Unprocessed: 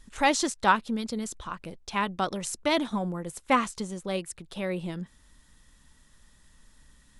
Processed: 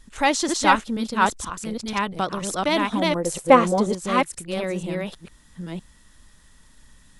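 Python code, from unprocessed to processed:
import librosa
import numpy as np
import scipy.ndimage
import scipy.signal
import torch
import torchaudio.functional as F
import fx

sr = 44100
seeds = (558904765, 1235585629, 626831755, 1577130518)

y = fx.reverse_delay(x, sr, ms=483, wet_db=-1)
y = fx.peak_eq(y, sr, hz=500.0, db=11.5, octaves=1.6, at=(3.15, 3.94))
y = y * 10.0 ** (3.0 / 20.0)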